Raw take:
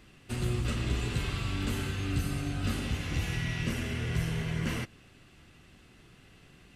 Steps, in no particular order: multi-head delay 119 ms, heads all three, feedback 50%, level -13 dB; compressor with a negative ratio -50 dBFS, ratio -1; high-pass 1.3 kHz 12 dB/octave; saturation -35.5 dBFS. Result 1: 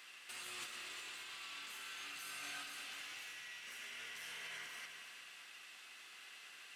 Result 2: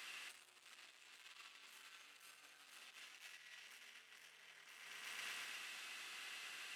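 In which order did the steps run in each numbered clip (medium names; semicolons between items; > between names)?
high-pass > saturation > compressor with a negative ratio > multi-head delay; saturation > multi-head delay > compressor with a negative ratio > high-pass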